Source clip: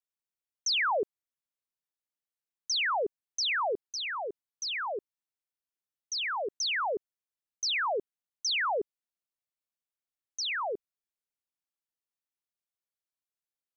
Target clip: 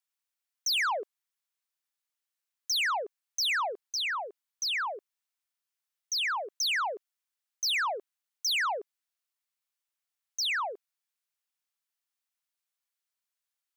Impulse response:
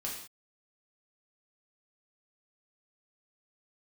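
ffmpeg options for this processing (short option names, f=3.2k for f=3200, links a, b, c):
-af "highpass=940,asoftclip=type=tanh:threshold=-31dB,volume=5.5dB"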